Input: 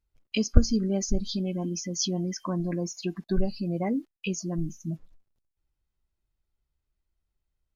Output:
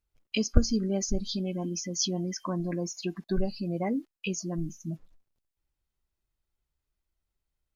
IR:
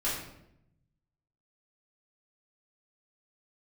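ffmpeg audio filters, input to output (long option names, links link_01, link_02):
-af "lowshelf=frequency=240:gain=-4"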